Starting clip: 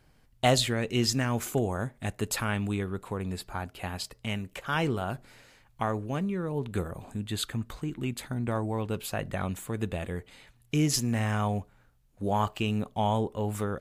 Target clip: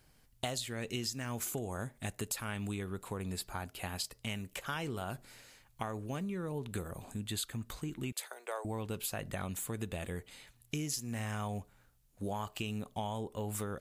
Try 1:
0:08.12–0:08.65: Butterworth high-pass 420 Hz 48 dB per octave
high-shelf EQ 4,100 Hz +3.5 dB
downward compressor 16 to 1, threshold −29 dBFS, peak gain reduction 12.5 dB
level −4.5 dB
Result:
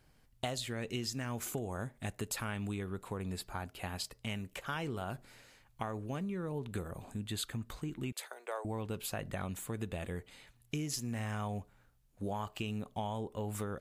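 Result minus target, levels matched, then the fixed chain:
8,000 Hz band −2.5 dB
0:08.12–0:08.65: Butterworth high-pass 420 Hz 48 dB per octave
high-shelf EQ 4,100 Hz +10.5 dB
downward compressor 16 to 1, threshold −29 dBFS, peak gain reduction 14 dB
level −4.5 dB

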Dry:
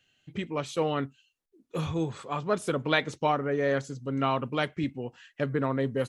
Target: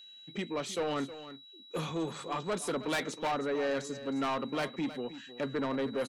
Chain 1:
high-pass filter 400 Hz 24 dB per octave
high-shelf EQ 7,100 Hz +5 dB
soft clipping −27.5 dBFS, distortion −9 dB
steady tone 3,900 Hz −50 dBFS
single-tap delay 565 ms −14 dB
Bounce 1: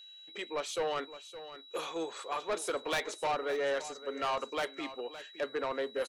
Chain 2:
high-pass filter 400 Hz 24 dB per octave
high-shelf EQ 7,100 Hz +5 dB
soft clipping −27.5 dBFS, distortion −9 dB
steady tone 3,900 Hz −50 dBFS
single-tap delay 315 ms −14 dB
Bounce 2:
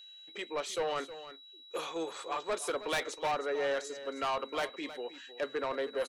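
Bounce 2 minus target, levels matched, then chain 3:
250 Hz band −8.5 dB
high-pass filter 180 Hz 24 dB per octave
high-shelf EQ 7,100 Hz +5 dB
soft clipping −27.5 dBFS, distortion −8 dB
steady tone 3,900 Hz −50 dBFS
single-tap delay 315 ms −14 dB

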